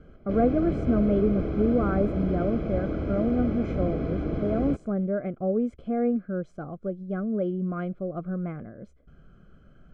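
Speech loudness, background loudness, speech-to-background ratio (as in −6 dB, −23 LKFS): −28.0 LKFS, −30.5 LKFS, 2.5 dB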